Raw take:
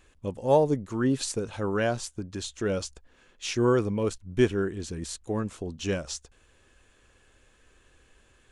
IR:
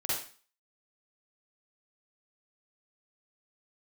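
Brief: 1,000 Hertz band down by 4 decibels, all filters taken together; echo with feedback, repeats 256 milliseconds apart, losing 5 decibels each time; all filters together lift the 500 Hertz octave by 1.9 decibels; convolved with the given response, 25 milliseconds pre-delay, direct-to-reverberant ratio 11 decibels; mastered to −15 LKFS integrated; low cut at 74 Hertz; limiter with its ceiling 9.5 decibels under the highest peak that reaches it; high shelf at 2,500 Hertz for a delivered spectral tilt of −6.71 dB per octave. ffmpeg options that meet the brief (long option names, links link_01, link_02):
-filter_complex "[0:a]highpass=74,equalizer=frequency=500:width_type=o:gain=4,equalizer=frequency=1000:width_type=o:gain=-5.5,highshelf=frequency=2500:gain=-9,alimiter=limit=-18.5dB:level=0:latency=1,aecho=1:1:256|512|768|1024|1280|1536|1792:0.562|0.315|0.176|0.0988|0.0553|0.031|0.0173,asplit=2[link_01][link_02];[1:a]atrim=start_sample=2205,adelay=25[link_03];[link_02][link_03]afir=irnorm=-1:irlink=0,volume=-17dB[link_04];[link_01][link_04]amix=inputs=2:normalize=0,volume=14.5dB"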